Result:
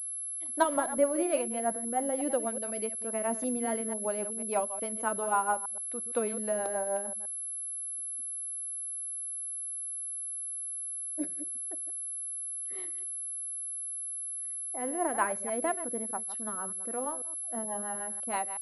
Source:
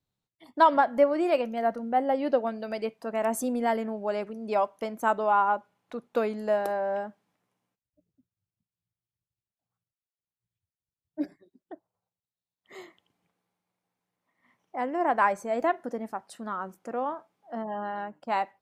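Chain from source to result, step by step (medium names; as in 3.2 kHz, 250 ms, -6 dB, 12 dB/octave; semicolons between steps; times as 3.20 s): chunks repeated in reverse 123 ms, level -12 dB; rotary cabinet horn 6.3 Hz; class-D stage that switches slowly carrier 11 kHz; trim -2.5 dB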